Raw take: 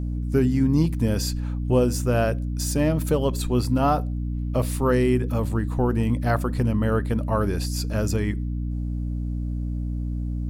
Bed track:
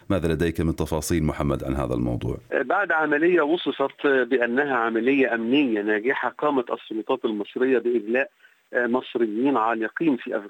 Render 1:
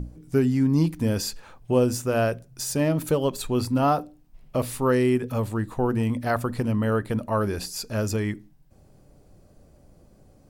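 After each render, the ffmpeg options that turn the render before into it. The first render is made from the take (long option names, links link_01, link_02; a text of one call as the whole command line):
ffmpeg -i in.wav -af "bandreject=frequency=60:width_type=h:width=6,bandreject=frequency=120:width_type=h:width=6,bandreject=frequency=180:width_type=h:width=6,bandreject=frequency=240:width_type=h:width=6,bandreject=frequency=300:width_type=h:width=6" out.wav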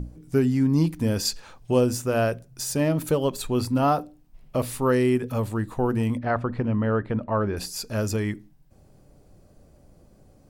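ffmpeg -i in.wav -filter_complex "[0:a]asettb=1/sr,asplit=3[link_01][link_02][link_03];[link_01]atrim=end=1.254[link_04];[link_02]atrim=start=1.25:end=1.81,asetpts=PTS-STARTPTS,afade=type=in:duration=0.004:curve=qsin,afade=type=out:start_time=0.556:duration=0.004:curve=qsin,equalizer=frequency=5300:width_type=o:width=1.6:gain=7[link_05];[link_03]atrim=start=1.806[link_06];[link_04][link_05]acrossfade=duration=0.004:curve1=hsin:curve2=qsin[link_07];[link_07][link_06]acrossfade=duration=0.004:curve1=qsin:curve2=hsin,asettb=1/sr,asplit=3[link_08][link_09][link_10];[link_08]atrim=end=6.184[link_11];[link_09]atrim=start=6.18:end=7.57,asetpts=PTS-STARTPTS,afade=type=in:duration=0.004:curve=qsin,afade=type=out:start_time=1.386:duration=0.004:curve=qsin,lowpass=2400[link_12];[link_10]atrim=start=7.566[link_13];[link_11][link_12]acrossfade=duration=0.004:curve1=hsin:curve2=qsin[link_14];[link_14][link_13]acrossfade=duration=0.004:curve1=qsin:curve2=hsin" out.wav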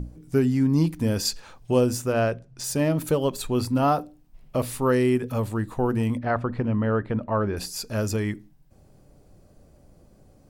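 ffmpeg -i in.wav -filter_complex "[0:a]asettb=1/sr,asplit=3[link_01][link_02][link_03];[link_01]atrim=end=2.124[link_04];[link_02]atrim=start=2.12:end=2.64,asetpts=PTS-STARTPTS,afade=type=in:duration=0.004:curve=qsin,afade=type=out:start_time=0.516:duration=0.004:curve=qsin,adynamicsmooth=sensitivity=3.5:basefreq=5300[link_05];[link_03]atrim=start=2.636[link_06];[link_04][link_05]acrossfade=duration=0.004:curve1=hsin:curve2=qsin[link_07];[link_07][link_06]acrossfade=duration=0.004:curve1=qsin:curve2=hsin" out.wav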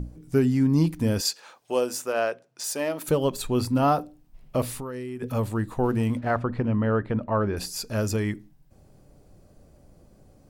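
ffmpeg -i in.wav -filter_complex "[0:a]asettb=1/sr,asplit=3[link_01][link_02][link_03];[link_01]atrim=end=1.214[link_04];[link_02]atrim=start=1.21:end=3.08,asetpts=PTS-STARTPTS,afade=type=in:duration=0.004:curve=qsin,afade=type=out:start_time=1.866:duration=0.004:curve=qsin,highpass=470[link_05];[link_03]atrim=start=3.076[link_06];[link_04][link_05]acrossfade=duration=0.004:curve1=hsin:curve2=qsin[link_07];[link_07][link_06]acrossfade=duration=0.004:curve1=qsin:curve2=hsin,asplit=3[link_08][link_09][link_10];[link_08]afade=type=out:start_time=4.71:duration=0.02[link_11];[link_09]acompressor=threshold=-31dB:ratio=8:attack=3.2:release=140:knee=1:detection=peak,afade=type=in:start_time=4.71:duration=0.02,afade=type=out:start_time=5.21:duration=0.02[link_12];[link_10]afade=type=in:start_time=5.21:duration=0.02[link_13];[link_11][link_12][link_13]amix=inputs=3:normalize=0,asettb=1/sr,asplit=3[link_14][link_15][link_16];[link_14]atrim=end=5.834[link_17];[link_15]atrim=start=5.83:end=6.4,asetpts=PTS-STARTPTS,afade=type=in:duration=0.004:curve=qsin,afade=type=out:start_time=0.566:duration=0.004:curve=qsin,aeval=exprs='sgn(val(0))*max(abs(val(0))-0.00237,0)':channel_layout=same[link_18];[link_16]atrim=start=6.396[link_19];[link_17][link_18]acrossfade=duration=0.004:curve1=hsin:curve2=qsin[link_20];[link_20][link_19]acrossfade=duration=0.004:curve1=qsin:curve2=hsin" out.wav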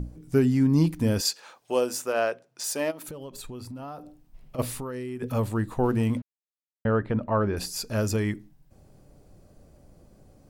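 ffmpeg -i in.wav -filter_complex "[0:a]asplit=3[link_01][link_02][link_03];[link_01]afade=type=out:start_time=2.9:duration=0.02[link_04];[link_02]acompressor=threshold=-37dB:ratio=6:attack=3.2:release=140:knee=1:detection=peak,afade=type=in:start_time=2.9:duration=0.02,afade=type=out:start_time=4.58:duration=0.02[link_05];[link_03]afade=type=in:start_time=4.58:duration=0.02[link_06];[link_04][link_05][link_06]amix=inputs=3:normalize=0,asplit=3[link_07][link_08][link_09];[link_07]atrim=end=6.22,asetpts=PTS-STARTPTS,afade=type=out:start_time=6.216:duration=0.004:curve=hsin[link_10];[link_08]atrim=start=6.22:end=6.85,asetpts=PTS-STARTPTS,volume=0[link_11];[link_09]atrim=start=6.85,asetpts=PTS-STARTPTS,afade=type=in:duration=0.004:curve=hsin[link_12];[link_10][link_11][link_12]concat=n=3:v=0:a=1" out.wav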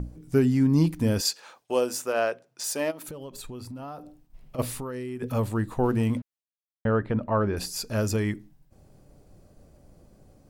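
ffmpeg -i in.wav -af "agate=range=-33dB:threshold=-53dB:ratio=3:detection=peak" out.wav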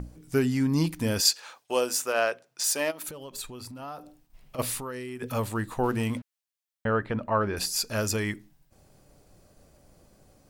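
ffmpeg -i in.wav -af "tiltshelf=frequency=730:gain=-5" out.wav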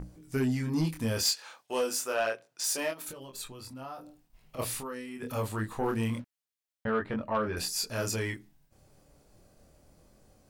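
ffmpeg -i in.wav -af "flanger=delay=22.5:depth=5.8:speed=0.28,asoftclip=type=tanh:threshold=-20dB" out.wav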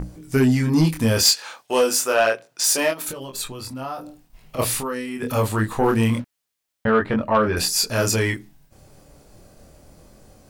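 ffmpeg -i in.wav -af "volume=11.5dB" out.wav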